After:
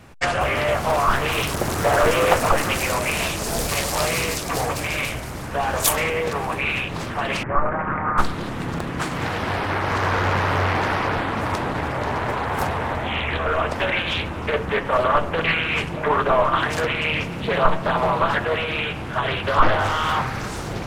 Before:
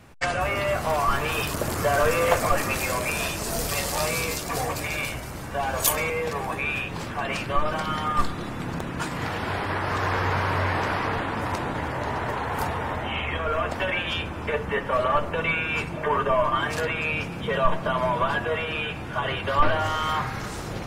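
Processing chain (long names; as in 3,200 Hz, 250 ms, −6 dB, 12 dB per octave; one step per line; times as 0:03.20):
0:07.43–0:08.18: elliptic low-pass filter 2,000 Hz, stop band 50 dB
highs frequency-modulated by the lows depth 0.61 ms
level +4 dB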